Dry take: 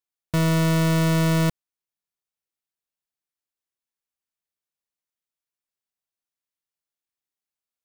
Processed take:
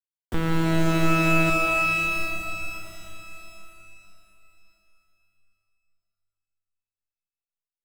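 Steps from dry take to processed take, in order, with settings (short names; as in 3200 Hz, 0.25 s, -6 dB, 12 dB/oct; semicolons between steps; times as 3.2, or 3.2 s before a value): LPC vocoder at 8 kHz pitch kept; bit-crush 7-bit; fifteen-band EQ 160 Hz -5 dB, 630 Hz -7 dB, 2500 Hz -5 dB; shimmer reverb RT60 3.1 s, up +12 st, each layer -2 dB, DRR 1.5 dB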